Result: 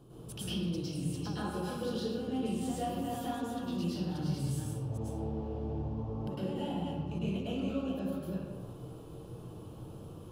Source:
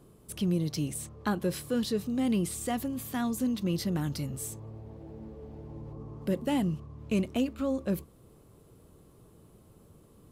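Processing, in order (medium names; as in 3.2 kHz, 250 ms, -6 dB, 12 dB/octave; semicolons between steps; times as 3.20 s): chunks repeated in reverse 237 ms, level -5 dB; graphic EQ with 31 bands 125 Hz +7 dB, 315 Hz +3 dB, 800 Hz +4 dB, 2 kHz -12 dB, 3.15 kHz +5 dB, 8 kHz -5 dB, 12.5 kHz -9 dB; compression 5:1, threshold -41 dBFS, peak gain reduction 17 dB; reverberation RT60 1.4 s, pre-delay 99 ms, DRR -10.5 dB; trim -2.5 dB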